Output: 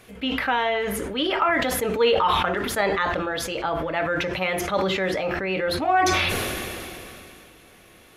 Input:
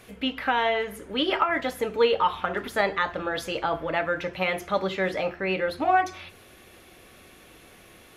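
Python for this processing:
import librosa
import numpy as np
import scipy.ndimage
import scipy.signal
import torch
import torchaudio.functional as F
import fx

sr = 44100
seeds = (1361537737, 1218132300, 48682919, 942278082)

y = fx.sustainer(x, sr, db_per_s=21.0)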